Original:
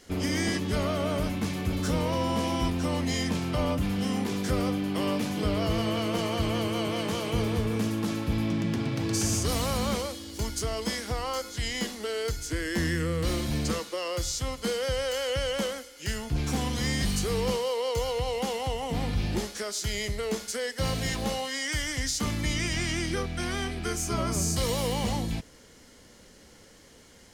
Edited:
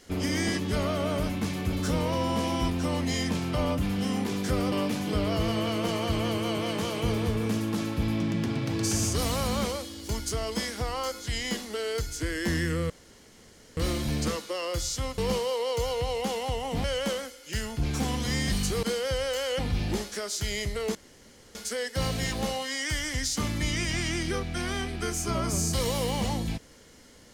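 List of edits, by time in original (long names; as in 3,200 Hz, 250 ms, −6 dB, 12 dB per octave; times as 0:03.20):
0:04.72–0:05.02: remove
0:13.20: splice in room tone 0.87 s
0:14.61–0:15.37: swap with 0:17.36–0:19.02
0:20.38: splice in room tone 0.60 s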